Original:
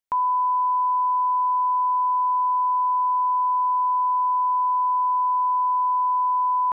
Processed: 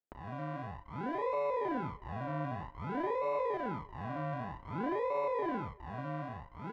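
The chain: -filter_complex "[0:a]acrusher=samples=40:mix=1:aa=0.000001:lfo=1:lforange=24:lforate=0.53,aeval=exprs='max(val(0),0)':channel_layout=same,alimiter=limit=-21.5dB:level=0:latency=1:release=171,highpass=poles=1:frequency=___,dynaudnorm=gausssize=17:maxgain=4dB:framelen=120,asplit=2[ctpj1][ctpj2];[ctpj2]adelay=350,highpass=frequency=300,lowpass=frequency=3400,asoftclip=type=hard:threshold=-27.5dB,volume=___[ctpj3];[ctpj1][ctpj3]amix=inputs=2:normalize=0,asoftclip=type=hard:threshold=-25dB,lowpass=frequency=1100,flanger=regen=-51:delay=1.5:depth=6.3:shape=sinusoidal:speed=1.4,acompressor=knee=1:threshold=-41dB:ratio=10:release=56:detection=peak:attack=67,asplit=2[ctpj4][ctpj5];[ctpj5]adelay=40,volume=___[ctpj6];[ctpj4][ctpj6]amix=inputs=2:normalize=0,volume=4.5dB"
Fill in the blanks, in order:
820, -26dB, -12dB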